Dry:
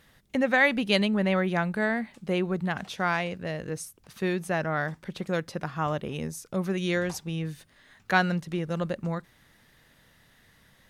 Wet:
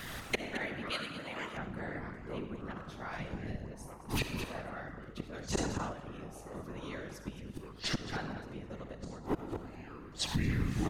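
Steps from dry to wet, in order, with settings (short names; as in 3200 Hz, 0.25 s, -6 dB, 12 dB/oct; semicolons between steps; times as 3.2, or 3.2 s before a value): echoes that change speed 88 ms, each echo -6 st, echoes 2, each echo -6 dB; flipped gate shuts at -26 dBFS, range -33 dB; echo 0.217 s -13 dB; reverb RT60 0.75 s, pre-delay 15 ms, DRR 7.5 dB; whisperiser; 3.13–3.67 tone controls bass +10 dB, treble +5 dB; compressor 3:1, threshold -49 dBFS, peak gain reduction 13 dB; hum 50 Hz, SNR 18 dB; 0.9–1.57 tilt +3 dB/oct; 5.22–5.93 sustainer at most 42 dB/s; gain +16.5 dB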